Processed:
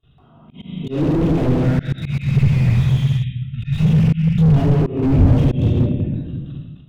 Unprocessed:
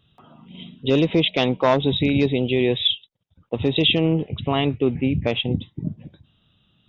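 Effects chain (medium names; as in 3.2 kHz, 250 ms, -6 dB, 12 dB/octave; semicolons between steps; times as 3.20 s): treble shelf 2.5 kHz -10 dB; level held to a coarse grid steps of 21 dB; 1.54–4.52 s: spectral selection erased 220–1300 Hz; peak limiter -20.5 dBFS, peak gain reduction 10 dB; simulated room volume 1200 m³, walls mixed, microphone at 3.3 m; level rider gain up to 10.5 dB; slow attack 272 ms; 5.18–5.79 s: peaking EQ 85 Hz +13.5 dB -> +2 dB 2.7 oct; slew-rate limiter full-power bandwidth 30 Hz; trim +4.5 dB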